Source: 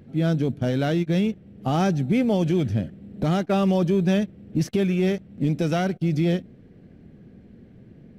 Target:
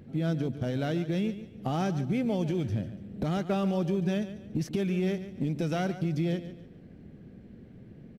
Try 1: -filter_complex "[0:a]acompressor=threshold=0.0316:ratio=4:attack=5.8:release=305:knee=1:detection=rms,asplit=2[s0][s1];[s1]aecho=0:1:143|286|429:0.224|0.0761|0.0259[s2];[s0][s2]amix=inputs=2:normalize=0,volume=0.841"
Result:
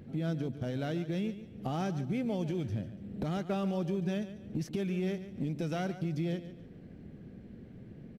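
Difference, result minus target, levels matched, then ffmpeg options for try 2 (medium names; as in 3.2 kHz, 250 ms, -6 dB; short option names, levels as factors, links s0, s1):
compression: peak gain reduction +4.5 dB
-filter_complex "[0:a]acompressor=threshold=0.0631:ratio=4:attack=5.8:release=305:knee=1:detection=rms,asplit=2[s0][s1];[s1]aecho=0:1:143|286|429:0.224|0.0761|0.0259[s2];[s0][s2]amix=inputs=2:normalize=0,volume=0.841"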